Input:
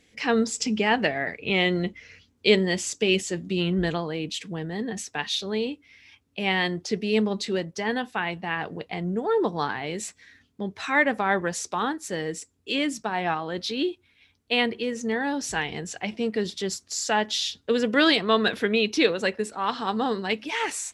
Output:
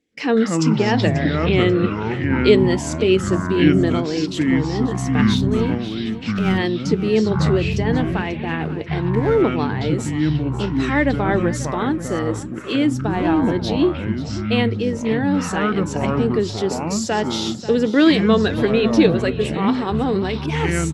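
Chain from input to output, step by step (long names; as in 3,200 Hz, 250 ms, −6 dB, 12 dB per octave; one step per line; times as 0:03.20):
0:05.37–0:06.58: gain on one half-wave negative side −7 dB
noise gate with hold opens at −44 dBFS
parametric band 320 Hz +11.5 dB 1.4 octaves
in parallel at −1 dB: downward compressor, threshold −32 dBFS, peak gain reduction 23.5 dB
0:19.94–0:20.48: on the sum: transient designer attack −10 dB, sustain +7 dB
delay with pitch and tempo change per echo 119 ms, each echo −6 semitones, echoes 3
on a send: repeating echo 538 ms, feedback 31%, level −15.5 dB
on the sum: level −2.5 dB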